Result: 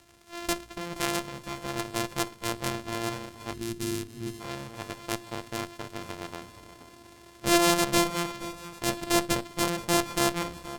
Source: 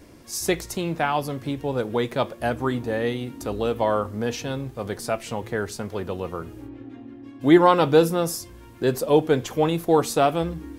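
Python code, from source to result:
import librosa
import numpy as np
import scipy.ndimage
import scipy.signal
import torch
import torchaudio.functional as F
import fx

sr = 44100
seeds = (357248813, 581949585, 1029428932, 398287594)

y = np.r_[np.sort(x[:len(x) // 128 * 128].reshape(-1, 128), axis=1).ravel(), x[len(x) // 128 * 128:]]
y = fx.high_shelf(y, sr, hz=5600.0, db=9.0)
y = fx.hum_notches(y, sr, base_hz=50, count=7)
y = fx.cheby_harmonics(y, sr, harmonics=(3, 6), levels_db=(-17, -14), full_scale_db=-3.5)
y = fx.echo_feedback(y, sr, ms=474, feedback_pct=34, wet_db=-13)
y = fx.spec_box(y, sr, start_s=3.53, length_s=0.88, low_hz=450.0, high_hz=11000.0, gain_db=-20)
y = fx.dmg_crackle(y, sr, seeds[0], per_s=94.0, level_db=-34.0)
y = np.interp(np.arange(len(y)), np.arange(len(y))[::2], y[::2])
y = y * librosa.db_to_amplitude(-6.5)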